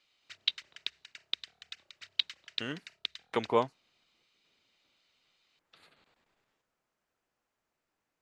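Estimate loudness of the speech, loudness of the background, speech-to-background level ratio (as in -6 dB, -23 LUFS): -34.0 LUFS, -37.0 LUFS, 3.0 dB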